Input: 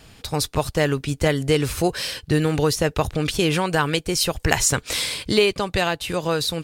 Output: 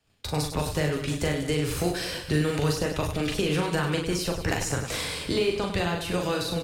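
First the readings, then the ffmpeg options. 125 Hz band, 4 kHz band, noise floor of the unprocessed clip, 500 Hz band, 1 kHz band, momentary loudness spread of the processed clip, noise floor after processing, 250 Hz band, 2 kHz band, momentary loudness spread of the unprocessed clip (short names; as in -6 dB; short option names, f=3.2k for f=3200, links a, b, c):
-3.5 dB, -7.0 dB, -51 dBFS, -5.5 dB, -6.5 dB, 3 LU, -37 dBFS, -4.0 dB, -6.0 dB, 5 LU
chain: -filter_complex "[0:a]agate=range=-25dB:threshold=-43dB:ratio=16:detection=peak,acrossover=split=85|370|1600[a][b][c][d];[a]acompressor=threshold=-36dB:ratio=4[e];[b]acompressor=threshold=-30dB:ratio=4[f];[c]acompressor=threshold=-32dB:ratio=4[g];[d]acompressor=threshold=-35dB:ratio=4[h];[e][f][g][h]amix=inputs=4:normalize=0,flanger=delay=9.2:depth=3.5:regen=-56:speed=0.64:shape=triangular,aecho=1:1:40|100|190|325|527.5:0.631|0.398|0.251|0.158|0.1,volume=4dB"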